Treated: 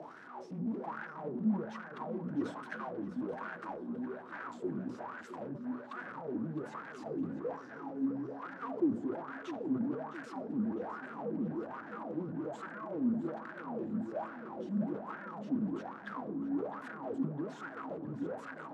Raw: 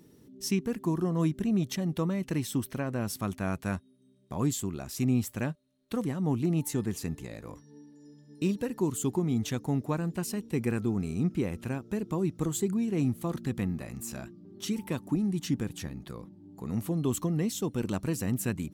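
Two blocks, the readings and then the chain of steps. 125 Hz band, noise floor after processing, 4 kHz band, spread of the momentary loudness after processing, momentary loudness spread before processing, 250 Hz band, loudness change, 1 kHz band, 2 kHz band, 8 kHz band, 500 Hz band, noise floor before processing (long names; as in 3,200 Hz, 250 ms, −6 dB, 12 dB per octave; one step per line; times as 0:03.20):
−15.0 dB, −49 dBFS, below −15 dB, 10 LU, 11 LU, −6.5 dB, −7.5 dB, 0.0 dB, −2.5 dB, below −25 dB, −5.5 dB, −60 dBFS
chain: power curve on the samples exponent 0.35
low-shelf EQ 240 Hz +8 dB
frequency shifter −16 Hz
mains-hum notches 60/120/180/240 Hz
tube saturation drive 27 dB, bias 0.3
LFO wah 1.2 Hz 220–1,600 Hz, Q 8.6
band-pass filter 140–7,500 Hz
tape delay 659 ms, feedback 54%, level −11 dB, low-pass 4,800 Hz
rectangular room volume 3,400 cubic metres, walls furnished, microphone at 0.61 metres
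level that may fall only so fast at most 120 dB per second
level +5 dB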